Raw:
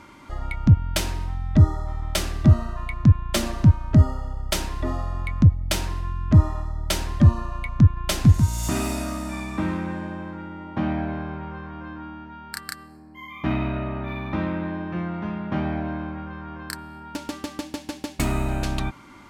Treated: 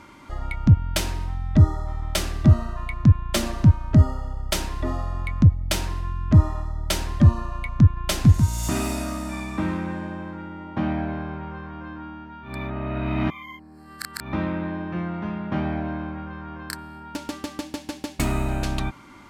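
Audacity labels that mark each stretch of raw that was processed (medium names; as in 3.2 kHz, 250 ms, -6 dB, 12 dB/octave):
12.490000	14.250000	reverse, crossfade 0.16 s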